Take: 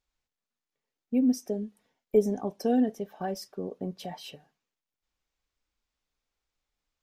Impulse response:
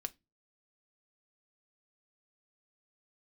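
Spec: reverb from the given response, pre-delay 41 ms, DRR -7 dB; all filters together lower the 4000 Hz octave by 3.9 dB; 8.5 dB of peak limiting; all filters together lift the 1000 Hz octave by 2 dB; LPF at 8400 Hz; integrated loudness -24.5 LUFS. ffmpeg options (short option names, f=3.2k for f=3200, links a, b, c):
-filter_complex "[0:a]lowpass=8.4k,equalizer=f=1k:t=o:g=3.5,equalizer=f=4k:t=o:g=-5.5,alimiter=limit=-19dB:level=0:latency=1,asplit=2[a][b];[1:a]atrim=start_sample=2205,adelay=41[c];[b][c]afir=irnorm=-1:irlink=0,volume=8.5dB[d];[a][d]amix=inputs=2:normalize=0,volume=-1.5dB"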